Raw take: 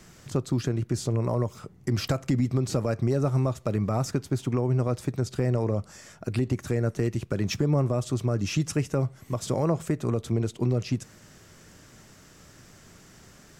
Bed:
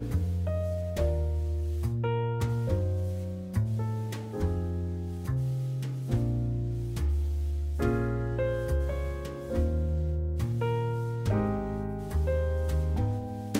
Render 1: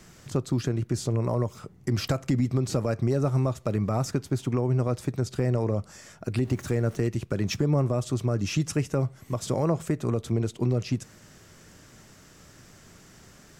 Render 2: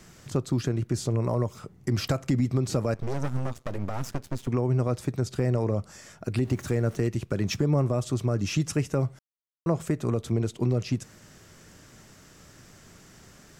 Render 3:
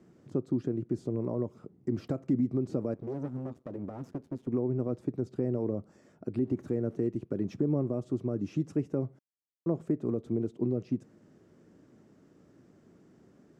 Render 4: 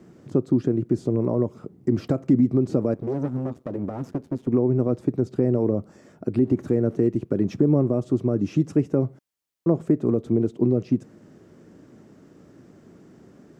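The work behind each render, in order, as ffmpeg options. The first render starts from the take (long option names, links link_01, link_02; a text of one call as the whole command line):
ffmpeg -i in.wav -filter_complex "[0:a]asettb=1/sr,asplit=3[link_01][link_02][link_03];[link_01]atrim=end=6.444[link_04];[link_02]atrim=start=6.44:end=6.96,asetpts=PTS-STARTPTS,afade=type=in:duration=0.004:curve=qsin,afade=type=out:start_time=0.516:duration=0.004:curve=qsin,aeval=exprs='val(0)+0.5*0.00668*sgn(val(0))':channel_layout=same[link_05];[link_03]atrim=start=6.956[link_06];[link_04][link_05]acrossfade=duration=0.004:curve1=hsin:curve2=qsin[link_07];[link_07][link_06]acrossfade=duration=0.004:curve1=qsin:curve2=hsin" out.wav
ffmpeg -i in.wav -filter_complex "[0:a]asettb=1/sr,asplit=3[link_01][link_02][link_03];[link_01]atrim=end=2.944[link_04];[link_02]atrim=start=2.94:end=4.48,asetpts=PTS-STARTPTS,afade=type=in:duration=0.004:curve=qsin,afade=type=out:start_time=1.536:duration=0.004:curve=qsin,aeval=exprs='max(val(0),0)':channel_layout=same[link_05];[link_03]atrim=start=4.476[link_06];[link_04][link_05]acrossfade=duration=0.004:curve1=hsin:curve2=qsin[link_07];[link_07][link_06]acrossfade=duration=0.004:curve1=qsin:curve2=hsin,asplit=3[link_08][link_09][link_10];[link_08]atrim=end=9.19,asetpts=PTS-STARTPTS,afade=type=out:start_time=9.186:duration=0.004:curve=hsin[link_11];[link_09]atrim=start=9.19:end=9.66,asetpts=PTS-STARTPTS,volume=0[link_12];[link_10]atrim=start=9.66,asetpts=PTS-STARTPTS,afade=type=in:duration=0.004:curve=hsin[link_13];[link_11][link_12][link_13]concat=n=3:v=0:a=1" out.wav
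ffmpeg -i in.wav -af "crystalizer=i=1.5:c=0,bandpass=frequency=300:width_type=q:width=1.5:csg=0" out.wav
ffmpeg -i in.wav -af "volume=9.5dB" out.wav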